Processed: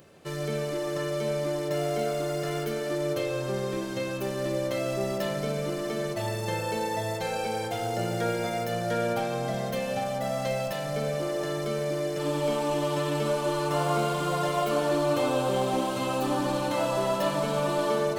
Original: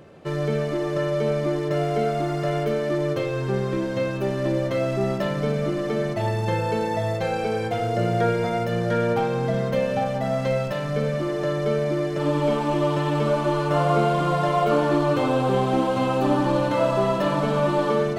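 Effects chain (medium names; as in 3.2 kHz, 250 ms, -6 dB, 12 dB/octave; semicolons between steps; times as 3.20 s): pre-emphasis filter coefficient 0.8; on a send: band-passed feedback delay 143 ms, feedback 82%, band-pass 690 Hz, level -7 dB; on the sum: trim +6 dB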